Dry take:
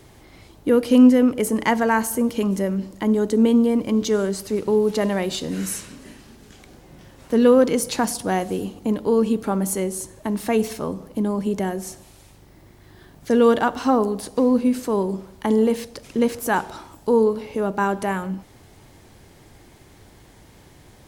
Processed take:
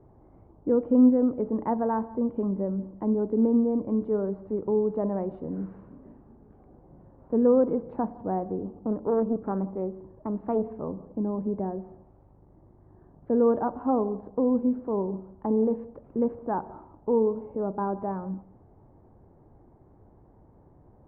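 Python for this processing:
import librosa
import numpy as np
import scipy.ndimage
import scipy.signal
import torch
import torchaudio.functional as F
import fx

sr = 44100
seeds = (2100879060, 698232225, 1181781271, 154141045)

y = scipy.signal.sosfilt(scipy.signal.butter(4, 1000.0, 'lowpass', fs=sr, output='sos'), x)
y = y + 10.0 ** (-23.5 / 20.0) * np.pad(y, (int(173 * sr / 1000.0), 0))[:len(y)]
y = fx.doppler_dist(y, sr, depth_ms=0.26, at=(8.61, 10.74))
y = F.gain(torch.from_numpy(y), -6.0).numpy()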